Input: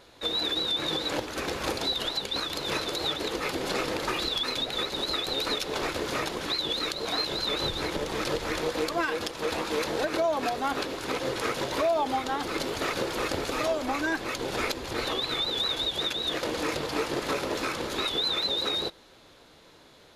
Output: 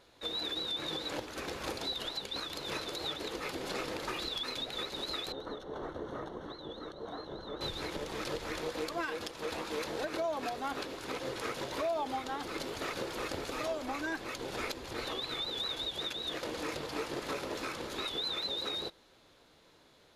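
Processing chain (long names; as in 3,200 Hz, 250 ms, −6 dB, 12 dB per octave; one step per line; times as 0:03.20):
0:05.32–0:07.61: moving average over 18 samples
level −8 dB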